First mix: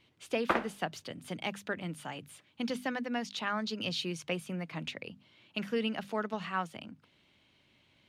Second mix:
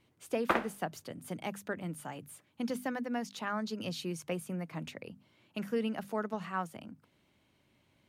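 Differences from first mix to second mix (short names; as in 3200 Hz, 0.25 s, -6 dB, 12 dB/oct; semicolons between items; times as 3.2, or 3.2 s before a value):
speech: add bell 3300 Hz -9.5 dB 1.6 oct; master: add high shelf 11000 Hz +12 dB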